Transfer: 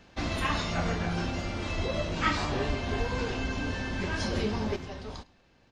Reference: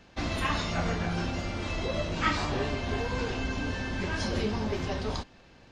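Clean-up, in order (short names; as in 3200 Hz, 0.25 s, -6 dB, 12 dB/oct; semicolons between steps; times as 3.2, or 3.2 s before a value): 1.76–1.88 HPF 140 Hz 24 dB/oct; 2.66–2.78 HPF 140 Hz 24 dB/oct; 2.98–3.1 HPF 140 Hz 24 dB/oct; inverse comb 0.106 s -23 dB; gain 0 dB, from 4.76 s +8 dB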